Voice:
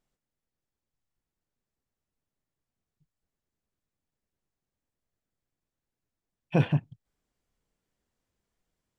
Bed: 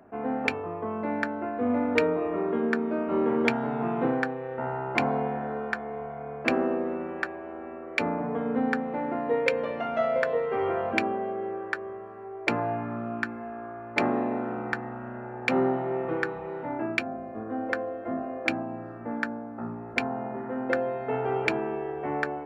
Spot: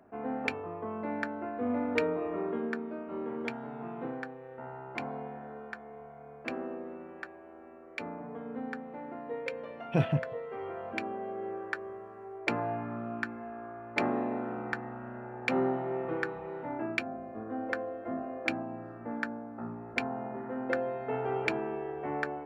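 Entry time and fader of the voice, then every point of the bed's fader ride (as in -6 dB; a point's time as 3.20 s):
3.40 s, -3.5 dB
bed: 2.46 s -5.5 dB
3.04 s -12 dB
10.75 s -12 dB
11.50 s -4.5 dB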